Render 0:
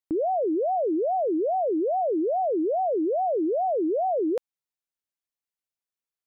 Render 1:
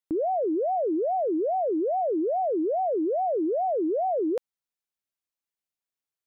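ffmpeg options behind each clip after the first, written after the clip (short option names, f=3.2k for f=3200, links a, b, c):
-af "acontrast=39,volume=-6.5dB"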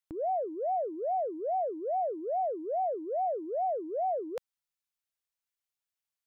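-af "equalizer=f=310:w=0.99:g=-14.5"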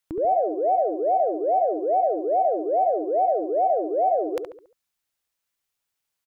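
-filter_complex "[0:a]asplit=2[a][b];[b]adelay=70,lowpass=f=1.8k:p=1,volume=-6dB,asplit=2[c][d];[d]adelay=70,lowpass=f=1.8k:p=1,volume=0.44,asplit=2[e][f];[f]adelay=70,lowpass=f=1.8k:p=1,volume=0.44,asplit=2[g][h];[h]adelay=70,lowpass=f=1.8k:p=1,volume=0.44,asplit=2[i][j];[j]adelay=70,lowpass=f=1.8k:p=1,volume=0.44[k];[a][c][e][g][i][k]amix=inputs=6:normalize=0,volume=9dB"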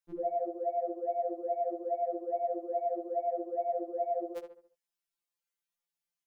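-af "afftfilt=real='re*2.83*eq(mod(b,8),0)':imag='im*2.83*eq(mod(b,8),0)':win_size=2048:overlap=0.75,volume=-8.5dB"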